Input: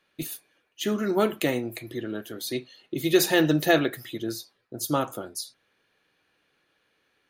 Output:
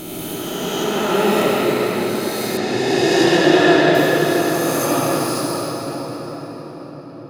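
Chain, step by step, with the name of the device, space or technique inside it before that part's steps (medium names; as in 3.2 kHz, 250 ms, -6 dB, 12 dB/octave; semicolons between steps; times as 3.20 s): reverse spectral sustain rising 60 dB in 2.99 s; shimmer-style reverb (harmony voices +12 st -10 dB; reverberation RT60 6.3 s, pre-delay 67 ms, DRR -5 dB); 2.57–3.95 s: low-pass 5.4 kHz 12 dB/octave; trim -3 dB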